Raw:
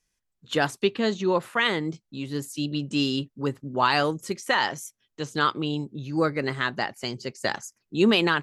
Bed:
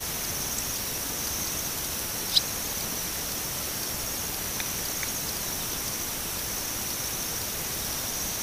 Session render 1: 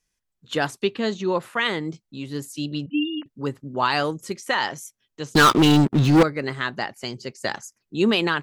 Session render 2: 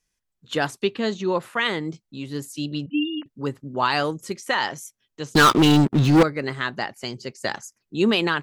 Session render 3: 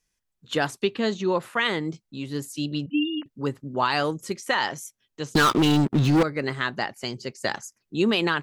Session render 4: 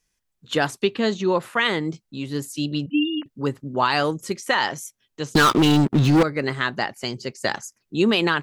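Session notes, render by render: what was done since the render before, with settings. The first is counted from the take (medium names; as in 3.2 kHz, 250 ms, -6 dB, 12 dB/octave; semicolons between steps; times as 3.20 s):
2.86–3.26 s: formants replaced by sine waves; 5.35–6.23 s: waveshaping leveller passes 5
no audible change
compression, threshold -17 dBFS, peak gain reduction 5 dB
trim +3 dB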